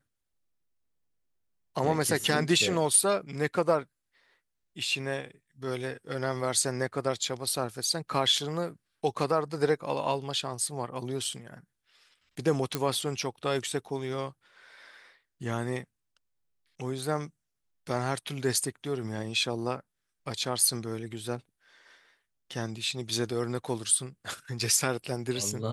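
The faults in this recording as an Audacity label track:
12.750000	12.750000	pop -12 dBFS

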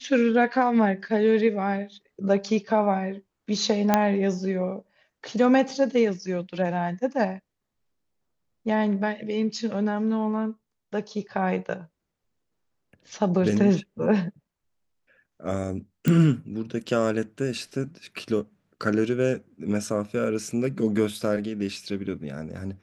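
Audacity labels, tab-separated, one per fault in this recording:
3.940000	3.940000	pop -5 dBFS
16.080000	16.080000	pop -11 dBFS

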